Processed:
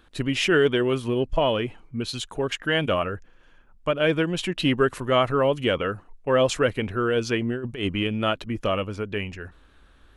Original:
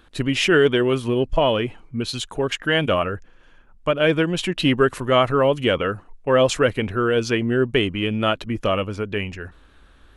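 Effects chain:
0:07.50–0:08.07: compressor whose output falls as the input rises −22 dBFS, ratio −0.5
level −3.5 dB

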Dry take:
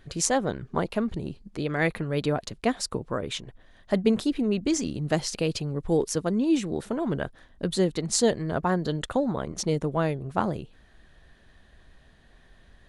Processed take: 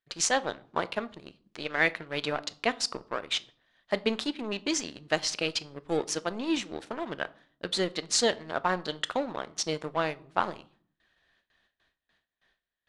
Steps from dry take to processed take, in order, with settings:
spectral tilt +4 dB per octave
leveller curve on the samples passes 2
low-pass filter 3,600 Hz 12 dB per octave
noise gate with hold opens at −53 dBFS
on a send: convolution reverb RT60 0.50 s, pre-delay 3 ms, DRR 15 dB
on the sum: level −7 dB

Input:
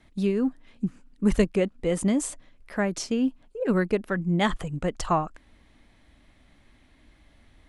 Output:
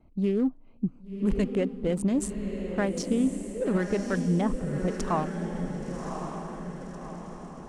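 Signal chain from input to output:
adaptive Wiener filter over 25 samples
0:04.41–0:04.88: Bessel low-pass filter 740 Hz, order 2
brickwall limiter −18 dBFS, peak gain reduction 9.5 dB
feedback delay with all-pass diffusion 1,116 ms, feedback 51%, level −6 dB

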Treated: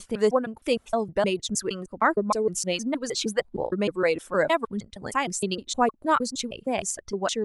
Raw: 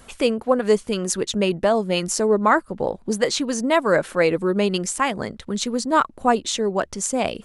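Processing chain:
slices reordered back to front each 155 ms, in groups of 6
reverb reduction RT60 1.8 s
level −4 dB

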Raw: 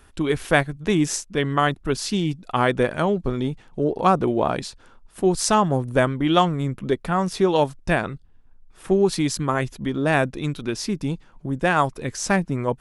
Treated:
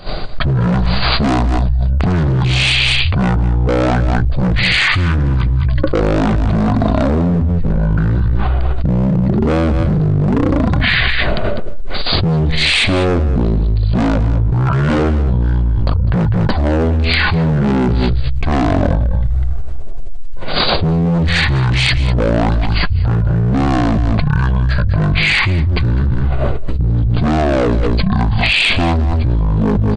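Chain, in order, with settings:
downward expander −40 dBFS
low-shelf EQ 220 Hz +4 dB
mains-hum notches 50/100/150/200/250/300 Hz
in parallel at −2 dB: speech leveller within 4 dB 0.5 s
on the sum: gain into a clipping stage and back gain 17.5 dB
single-tap delay 86 ms −13 dB
wrong playback speed 78 rpm record played at 33 rpm
envelope flattener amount 100%
level +3.5 dB

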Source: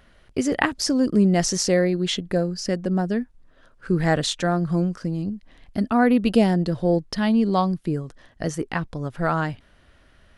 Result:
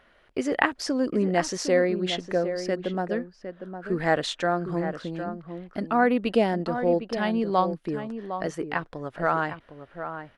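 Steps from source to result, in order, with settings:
bass and treble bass −13 dB, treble −11 dB
slap from a distant wall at 130 metres, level −9 dB

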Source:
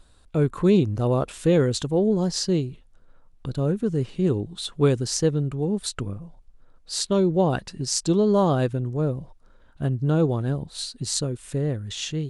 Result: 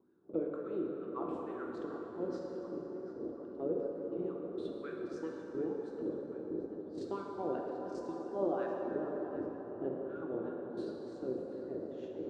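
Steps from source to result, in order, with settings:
meter weighting curve A
noise in a band 55–490 Hz −39 dBFS
low shelf with overshoot 450 Hz +10 dB, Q 3
downward compressor 5 to 1, threshold −21 dBFS, peak gain reduction 12 dB
LFO wah 2.1 Hz 540–1,600 Hz, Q 6.3
noise gate −46 dBFS, range −20 dB
tape delay 737 ms, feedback 62%, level −12 dB, low-pass 3,600 Hz
dense smooth reverb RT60 4.3 s, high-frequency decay 0.55×, DRR −1.5 dB
level +4 dB

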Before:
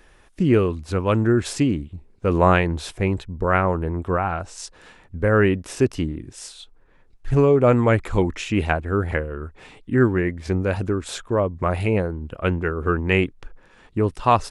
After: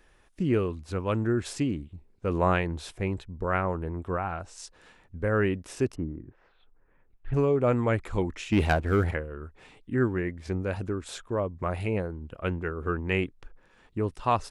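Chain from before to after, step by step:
0:05.94–0:07.33: low-pass filter 1,300 Hz → 3,300 Hz 24 dB per octave
0:08.52–0:09.11: leveller curve on the samples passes 2
level −8 dB

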